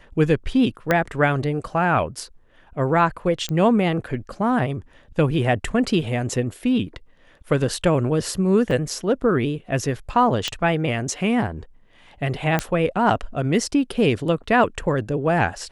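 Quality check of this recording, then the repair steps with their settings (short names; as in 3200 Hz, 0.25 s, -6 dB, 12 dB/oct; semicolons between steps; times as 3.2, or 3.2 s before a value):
0.91 pop -6 dBFS
3.49 pop -13 dBFS
8.71 gap 3.4 ms
10.48 pop -9 dBFS
12.59 pop -7 dBFS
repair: de-click; interpolate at 8.71, 3.4 ms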